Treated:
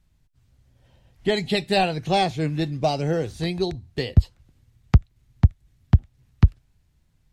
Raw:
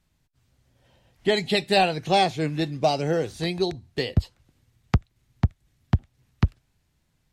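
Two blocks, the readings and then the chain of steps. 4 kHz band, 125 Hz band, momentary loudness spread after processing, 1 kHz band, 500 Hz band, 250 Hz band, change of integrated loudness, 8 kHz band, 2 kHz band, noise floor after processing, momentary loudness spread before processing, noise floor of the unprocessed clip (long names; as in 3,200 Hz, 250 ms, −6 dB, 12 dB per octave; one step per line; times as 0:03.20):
−1.5 dB, +5.0 dB, 6 LU, −1.0 dB, −0.5 dB, +1.5 dB, +2.0 dB, −1.5 dB, −1.5 dB, −65 dBFS, 7 LU, −71 dBFS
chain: low-shelf EQ 130 Hz +11.5 dB
level −1.5 dB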